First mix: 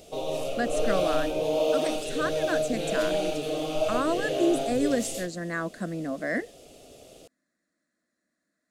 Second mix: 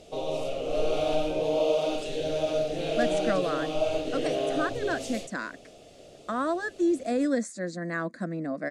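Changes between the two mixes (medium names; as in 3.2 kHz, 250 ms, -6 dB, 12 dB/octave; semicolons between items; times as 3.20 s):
speech: entry +2.40 s; master: add distance through air 56 m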